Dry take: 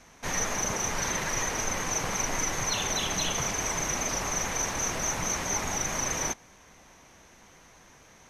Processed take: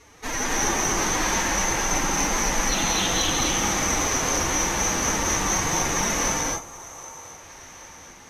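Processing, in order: formant-preserving pitch shift +10 st; split-band echo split 460 Hz, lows 0.116 s, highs 0.769 s, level -16 dB; in parallel at -11 dB: overloaded stage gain 25.5 dB; on the sum: spectral gain 6.3–7.19, 1400–5900 Hz -6 dB; non-linear reverb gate 0.29 s rising, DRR -2.5 dB; gain +1 dB

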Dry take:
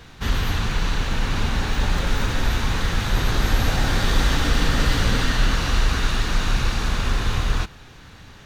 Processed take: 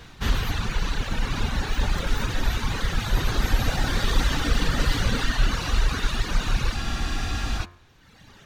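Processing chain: reverb removal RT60 1.5 s; de-hum 87.97 Hz, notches 27; spectral freeze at 6.77, 0.80 s

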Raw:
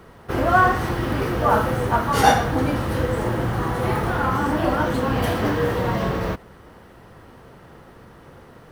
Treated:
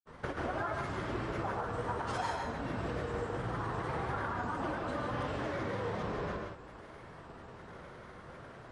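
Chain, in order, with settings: elliptic low-pass 8900 Hz, stop band 40 dB; bell 1100 Hz +4 dB 1.6 oct; compressor 10:1, threshold -28 dBFS, peak gain reduction 20.5 dB; grains, pitch spread up and down by 3 st; non-linear reverb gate 0.2 s rising, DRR 2 dB; gain -5.5 dB

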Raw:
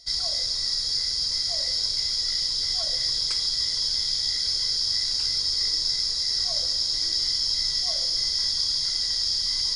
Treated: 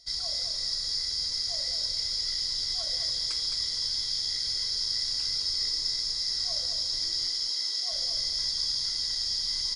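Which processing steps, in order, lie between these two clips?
7.26–7.92 elliptic high-pass 270 Hz; on a send: feedback echo 0.213 s, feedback 26%, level -6.5 dB; on the sum: gain -5.5 dB

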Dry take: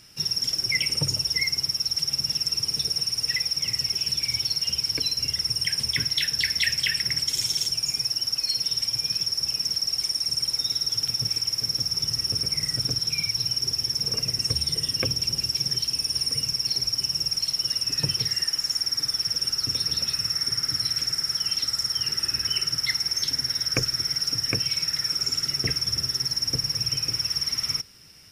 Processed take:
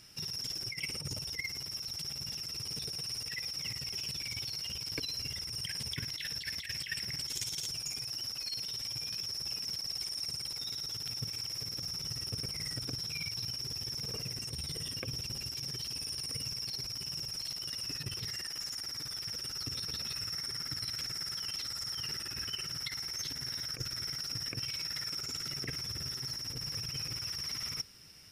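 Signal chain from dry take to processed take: negative-ratio compressor -28 dBFS, ratio -0.5; gain -8.5 dB

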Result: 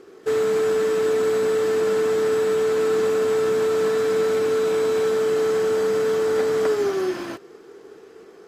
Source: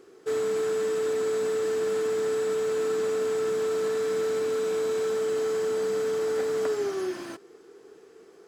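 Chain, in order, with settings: median filter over 5 samples; gain +6.5 dB; AAC 48 kbps 32000 Hz

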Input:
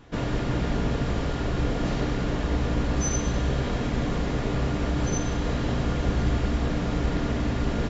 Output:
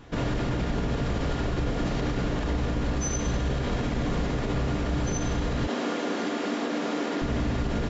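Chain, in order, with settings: 5.67–7.22 steep high-pass 230 Hz 36 dB/oct; limiter -21.5 dBFS, peak gain reduction 8.5 dB; gain +2.5 dB

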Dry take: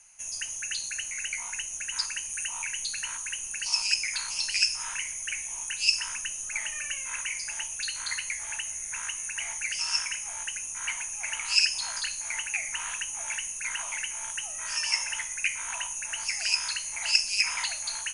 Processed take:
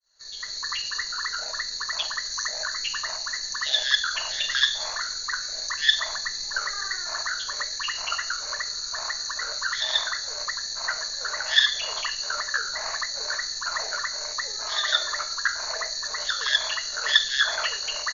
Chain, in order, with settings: opening faded in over 0.63 s; notch 4700 Hz, Q 10; pitch shift -7 st; gain +4.5 dB

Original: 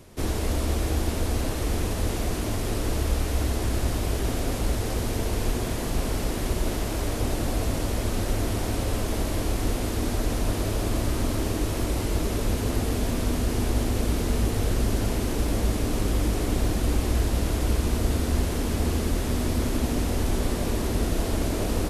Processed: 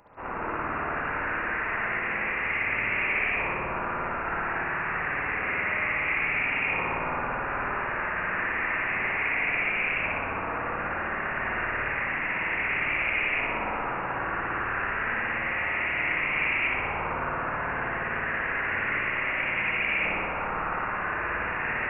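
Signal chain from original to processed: LFO high-pass saw down 0.3 Hz 780–2200 Hz; inverted band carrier 3100 Hz; spring tank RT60 1.7 s, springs 54 ms, chirp 20 ms, DRR -6.5 dB

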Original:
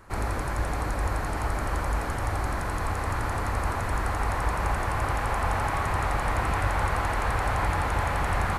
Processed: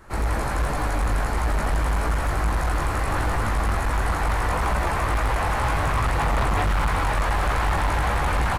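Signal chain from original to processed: echo 0.193 s -4 dB; chorus voices 6, 1.3 Hz, delay 17 ms, depth 3.5 ms; hard clip -24.5 dBFS, distortion -12 dB; gain +6.5 dB

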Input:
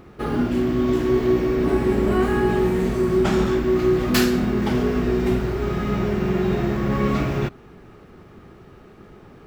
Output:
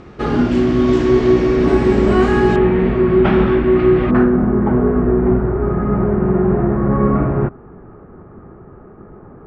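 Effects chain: LPF 7100 Hz 24 dB/oct, from 2.56 s 2900 Hz, from 4.11 s 1400 Hz; gain +6.5 dB

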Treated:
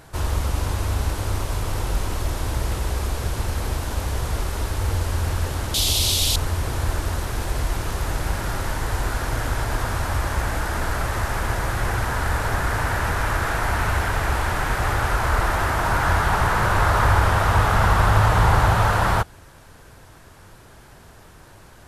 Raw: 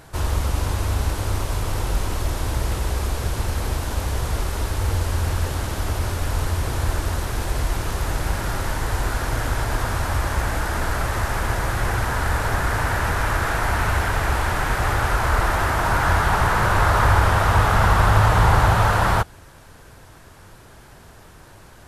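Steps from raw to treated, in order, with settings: 5.74–6.36 resonant high shelf 2400 Hz +14 dB, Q 3; gain -1 dB

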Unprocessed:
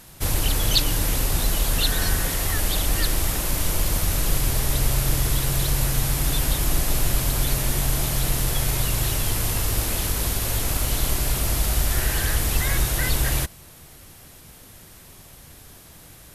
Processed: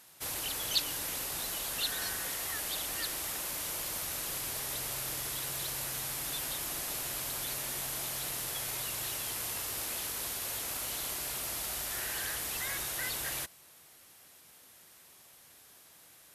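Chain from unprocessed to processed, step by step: HPF 700 Hz 6 dB/oct; gain -9 dB

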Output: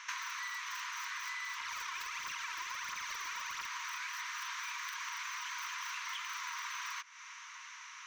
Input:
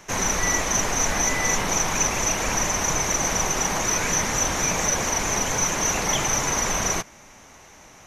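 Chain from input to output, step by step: tracing distortion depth 0.2 ms; brick-wall FIR high-pass 920 Hz; tilt +2.5 dB/oct; 1.6–3.66 phaser 1.5 Hz, delay 3.1 ms, feedback 52%; air absorption 190 m; compressor 16:1, threshold -40 dBFS, peak gain reduction 17 dB; gain +2 dB

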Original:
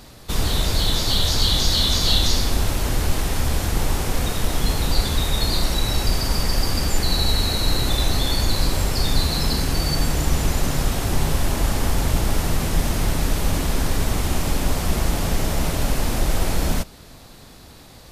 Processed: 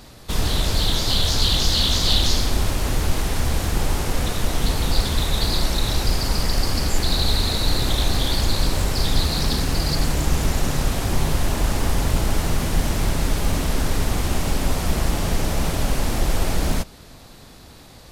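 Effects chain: Doppler distortion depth 0.5 ms

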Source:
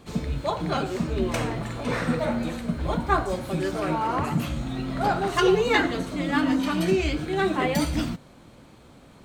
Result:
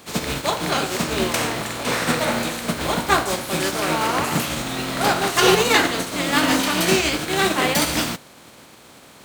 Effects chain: spectral contrast lowered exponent 0.58; HPF 170 Hz 6 dB/oct; gain +5 dB

